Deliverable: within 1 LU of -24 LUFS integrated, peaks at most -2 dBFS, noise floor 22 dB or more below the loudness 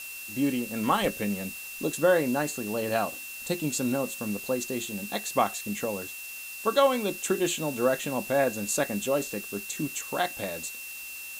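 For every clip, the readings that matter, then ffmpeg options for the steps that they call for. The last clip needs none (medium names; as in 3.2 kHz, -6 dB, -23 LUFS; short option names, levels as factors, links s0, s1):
steady tone 2.7 kHz; tone level -40 dBFS; noise floor -40 dBFS; noise floor target -51 dBFS; loudness -28.5 LUFS; peak level -10.0 dBFS; loudness target -24.0 LUFS
-> -af "bandreject=f=2700:w=30"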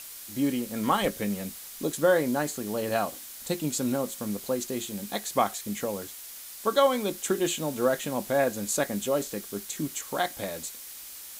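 steady tone not found; noise floor -43 dBFS; noise floor target -51 dBFS
-> -af "afftdn=nr=8:nf=-43"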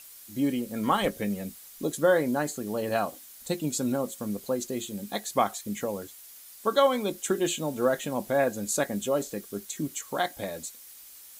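noise floor -49 dBFS; noise floor target -51 dBFS
-> -af "afftdn=nr=6:nf=-49"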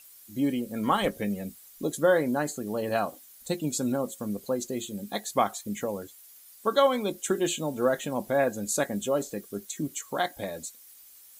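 noise floor -52 dBFS; loudness -29.0 LUFS; peak level -10.0 dBFS; loudness target -24.0 LUFS
-> -af "volume=1.78"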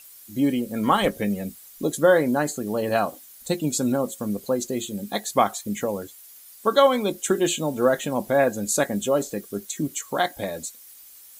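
loudness -24.0 LUFS; peak level -5.0 dBFS; noise floor -47 dBFS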